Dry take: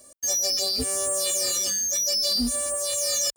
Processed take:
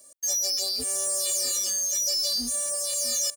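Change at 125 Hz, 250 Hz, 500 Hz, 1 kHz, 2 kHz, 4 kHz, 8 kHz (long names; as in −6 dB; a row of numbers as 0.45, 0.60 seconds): can't be measured, −10.0 dB, −6.5 dB, −6.5 dB, −6.0 dB, −2.5 dB, −1.0 dB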